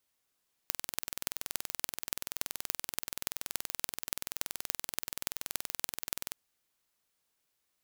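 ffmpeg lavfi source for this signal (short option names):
-f lavfi -i "aevalsrc='0.75*eq(mod(n,2100),0)*(0.5+0.5*eq(mod(n,12600),0))':d=5.64:s=44100"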